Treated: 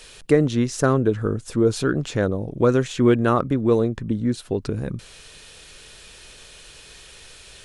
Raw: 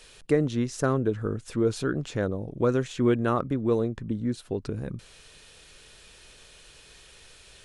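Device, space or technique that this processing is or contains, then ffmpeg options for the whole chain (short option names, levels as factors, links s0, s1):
exciter from parts: -filter_complex "[0:a]asettb=1/sr,asplit=3[s0][s1][s2];[s0]atrim=end=1.314[s3];[s1]atrim=start=1.31:end=1.74,asetpts=PTS-STARTPTS,afade=t=in:d=0.004:c=qsin,afade=t=out:st=0.426:d=0.004:c=qsin,equalizer=f=2300:t=o:w=1.5:g=-5.5[s4];[s2]atrim=start=1.736[s5];[s3][s4]acrossfade=d=0.004:c1=hsin:c2=qsin[s6];[s6][s5]acrossfade=d=0.004:c1=qsin:c2=hsin,asplit=2[s7][s8];[s8]highpass=f=2700:p=1,asoftclip=type=tanh:threshold=0.0188,volume=0.224[s9];[s7][s9]amix=inputs=2:normalize=0,volume=2"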